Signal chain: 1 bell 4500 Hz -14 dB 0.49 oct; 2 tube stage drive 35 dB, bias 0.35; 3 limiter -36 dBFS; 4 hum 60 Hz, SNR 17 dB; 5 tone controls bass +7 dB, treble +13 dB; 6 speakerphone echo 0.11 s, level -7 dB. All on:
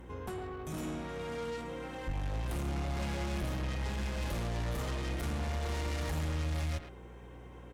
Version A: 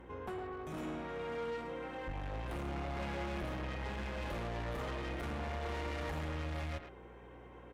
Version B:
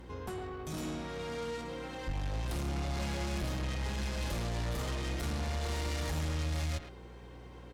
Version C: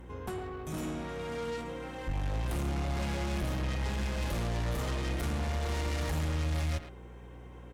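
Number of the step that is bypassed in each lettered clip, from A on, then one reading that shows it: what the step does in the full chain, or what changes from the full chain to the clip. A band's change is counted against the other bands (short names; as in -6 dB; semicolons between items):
5, 8 kHz band -9.5 dB; 1, 8 kHz band +3.0 dB; 3, mean gain reduction 2.0 dB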